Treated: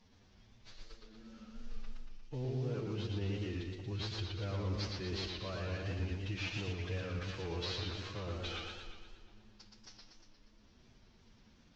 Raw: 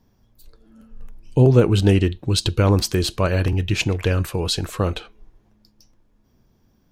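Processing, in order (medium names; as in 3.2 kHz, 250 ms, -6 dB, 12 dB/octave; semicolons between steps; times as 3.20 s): CVSD coder 32 kbps; peaking EQ 3.6 kHz +5 dB 2.6 oct; reverse; compression 12:1, threshold -29 dBFS, peak gain reduction 21 dB; reverse; peak limiter -27.5 dBFS, peak gain reduction 7.5 dB; time stretch by phase-locked vocoder 1.7×; modulated delay 118 ms, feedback 59%, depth 126 cents, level -3 dB; trim -5 dB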